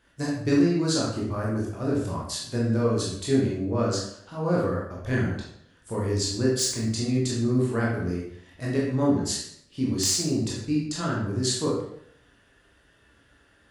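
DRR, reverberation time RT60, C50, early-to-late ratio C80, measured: -5.0 dB, 0.70 s, 1.5 dB, 6.0 dB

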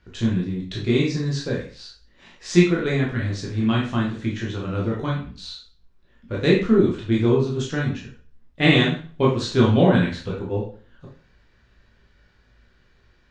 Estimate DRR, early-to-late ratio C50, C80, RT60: -4.0 dB, 4.5 dB, 10.0 dB, 0.40 s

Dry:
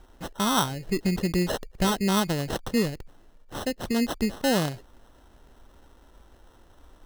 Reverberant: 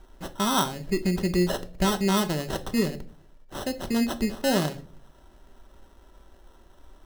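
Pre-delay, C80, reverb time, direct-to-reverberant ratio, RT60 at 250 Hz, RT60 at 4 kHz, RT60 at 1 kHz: 3 ms, 22.0 dB, 0.45 s, 7.0 dB, 0.65 s, 0.35 s, 0.40 s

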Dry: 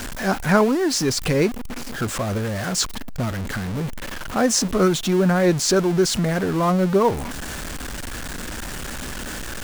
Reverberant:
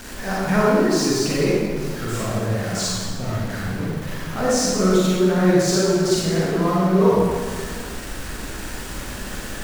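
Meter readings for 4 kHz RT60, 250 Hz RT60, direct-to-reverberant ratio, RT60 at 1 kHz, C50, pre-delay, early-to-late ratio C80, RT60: 1.3 s, 2.1 s, -7.5 dB, 1.6 s, -4.0 dB, 34 ms, -1.0 dB, 1.7 s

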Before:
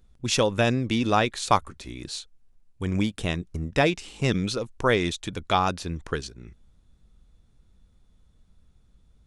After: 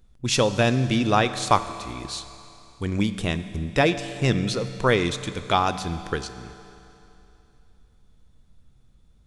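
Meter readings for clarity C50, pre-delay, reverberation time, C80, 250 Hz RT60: 12.0 dB, 7 ms, 2.9 s, 12.5 dB, 2.9 s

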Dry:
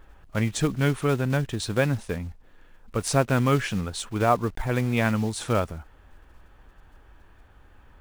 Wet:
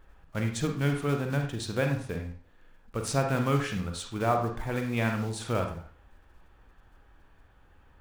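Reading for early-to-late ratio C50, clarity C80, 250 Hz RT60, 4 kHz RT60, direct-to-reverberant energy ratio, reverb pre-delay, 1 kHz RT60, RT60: 6.0 dB, 10.5 dB, 0.40 s, 0.40 s, 4.0 dB, 38 ms, 0.45 s, 0.45 s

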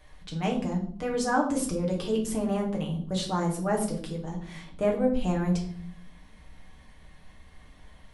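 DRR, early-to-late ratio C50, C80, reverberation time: -1.5 dB, 8.5 dB, 12.5 dB, 0.55 s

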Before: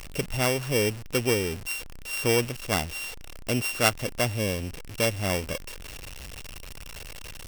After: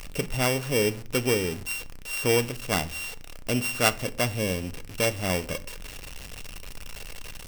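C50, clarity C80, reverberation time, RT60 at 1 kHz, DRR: 19.5 dB, 24.0 dB, 0.45 s, 0.40 s, 11.0 dB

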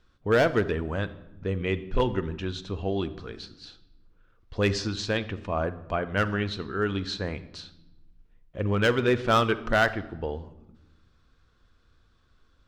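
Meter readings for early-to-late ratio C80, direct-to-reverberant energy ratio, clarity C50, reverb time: 17.5 dB, 12.0 dB, 15.5 dB, 0.95 s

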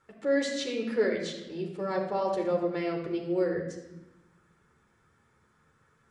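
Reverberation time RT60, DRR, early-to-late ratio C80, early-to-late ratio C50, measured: 1.0 s, 0.0 dB, 7.5 dB, 5.5 dB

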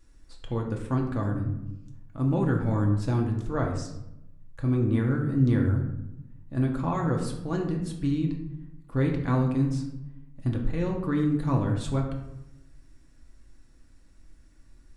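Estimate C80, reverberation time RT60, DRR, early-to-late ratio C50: 9.0 dB, 0.85 s, 0.5 dB, 6.0 dB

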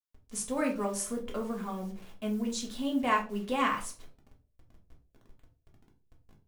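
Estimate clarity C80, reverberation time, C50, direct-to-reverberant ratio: 16.0 dB, 0.40 s, 11.0 dB, 0.0 dB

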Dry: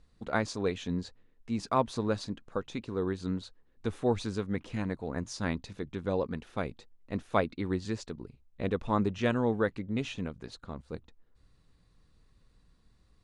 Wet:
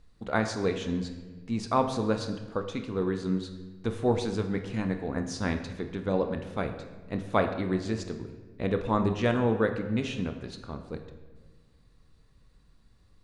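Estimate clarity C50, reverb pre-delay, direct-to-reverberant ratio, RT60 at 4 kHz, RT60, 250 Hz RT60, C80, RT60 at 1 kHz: 9.0 dB, 25 ms, 6.0 dB, 1.0 s, 1.4 s, 1.9 s, 10.5 dB, 1.2 s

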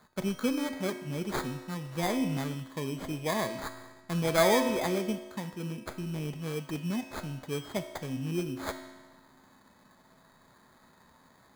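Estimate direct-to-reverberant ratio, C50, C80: 6.0 dB, 8.5 dB, 10.0 dB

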